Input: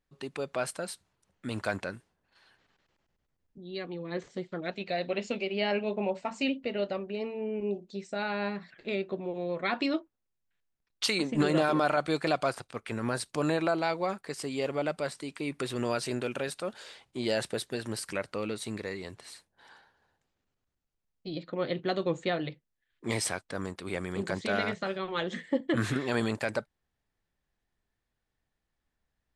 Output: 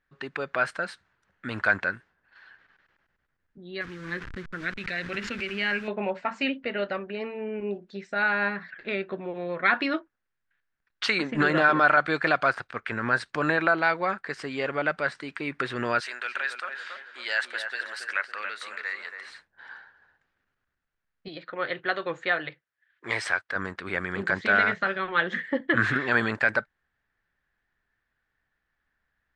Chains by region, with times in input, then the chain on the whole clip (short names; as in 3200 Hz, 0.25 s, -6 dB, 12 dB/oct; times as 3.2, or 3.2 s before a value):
3.81–5.88 level-crossing sampler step -43.5 dBFS + bell 660 Hz -13.5 dB 1.2 oct + backwards sustainer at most 37 dB/s
16–19.26 HPF 1100 Hz + high shelf 9200 Hz +6.5 dB + darkening echo 0.278 s, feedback 51%, low-pass 1500 Hz, level -5 dB
21.28–23.56 HPF 110 Hz + bell 210 Hz -11.5 dB 1.3 oct
whole clip: LPF 4700 Hz 12 dB/oct; bell 1600 Hz +15 dB 0.96 oct